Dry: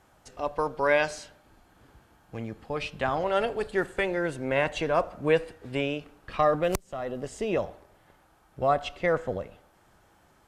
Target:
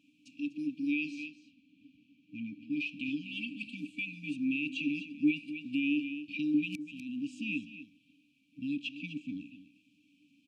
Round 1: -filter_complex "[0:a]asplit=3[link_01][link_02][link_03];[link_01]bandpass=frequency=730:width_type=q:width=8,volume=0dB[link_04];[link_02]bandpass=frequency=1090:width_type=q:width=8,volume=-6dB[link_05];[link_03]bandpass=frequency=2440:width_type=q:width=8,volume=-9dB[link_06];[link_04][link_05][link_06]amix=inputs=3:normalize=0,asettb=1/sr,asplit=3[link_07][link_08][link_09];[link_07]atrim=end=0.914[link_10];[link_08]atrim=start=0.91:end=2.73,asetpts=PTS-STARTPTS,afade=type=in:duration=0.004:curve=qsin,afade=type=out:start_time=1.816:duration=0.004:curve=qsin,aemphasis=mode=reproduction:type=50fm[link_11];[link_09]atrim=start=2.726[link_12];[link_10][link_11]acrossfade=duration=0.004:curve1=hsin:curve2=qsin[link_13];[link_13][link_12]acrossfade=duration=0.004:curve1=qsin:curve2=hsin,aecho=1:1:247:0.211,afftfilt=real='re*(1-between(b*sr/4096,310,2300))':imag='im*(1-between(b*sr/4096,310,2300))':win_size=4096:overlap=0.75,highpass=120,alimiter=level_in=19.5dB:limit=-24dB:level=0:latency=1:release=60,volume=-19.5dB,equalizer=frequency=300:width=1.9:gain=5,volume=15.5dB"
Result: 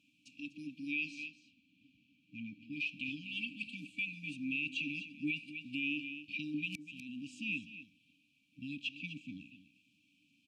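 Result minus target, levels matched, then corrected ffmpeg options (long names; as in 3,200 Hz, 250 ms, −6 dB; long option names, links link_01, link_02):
250 Hz band −5.5 dB
-filter_complex "[0:a]asplit=3[link_01][link_02][link_03];[link_01]bandpass=frequency=730:width_type=q:width=8,volume=0dB[link_04];[link_02]bandpass=frequency=1090:width_type=q:width=8,volume=-6dB[link_05];[link_03]bandpass=frequency=2440:width_type=q:width=8,volume=-9dB[link_06];[link_04][link_05][link_06]amix=inputs=3:normalize=0,asettb=1/sr,asplit=3[link_07][link_08][link_09];[link_07]atrim=end=0.914[link_10];[link_08]atrim=start=0.91:end=2.73,asetpts=PTS-STARTPTS,afade=type=in:duration=0.004:curve=qsin,afade=type=out:start_time=1.816:duration=0.004:curve=qsin,aemphasis=mode=reproduction:type=50fm[link_11];[link_09]atrim=start=2.726[link_12];[link_10][link_11]acrossfade=duration=0.004:curve1=hsin:curve2=qsin[link_13];[link_13][link_12]acrossfade=duration=0.004:curve1=qsin:curve2=hsin,aecho=1:1:247:0.211,afftfilt=real='re*(1-between(b*sr/4096,310,2300))':imag='im*(1-between(b*sr/4096,310,2300))':win_size=4096:overlap=0.75,highpass=120,alimiter=level_in=19.5dB:limit=-24dB:level=0:latency=1:release=60,volume=-19.5dB,equalizer=frequency=300:width=1.9:gain=16,volume=15.5dB"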